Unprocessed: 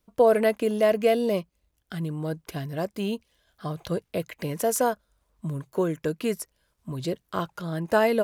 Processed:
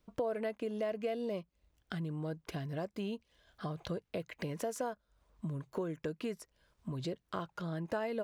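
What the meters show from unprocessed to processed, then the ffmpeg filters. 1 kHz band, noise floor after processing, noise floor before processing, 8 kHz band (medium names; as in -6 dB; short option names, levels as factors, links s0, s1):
-14.0 dB, -78 dBFS, -74 dBFS, -16.0 dB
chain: -af "equalizer=f=13000:t=o:w=1.1:g=-13,acompressor=threshold=0.01:ratio=3,volume=1.12"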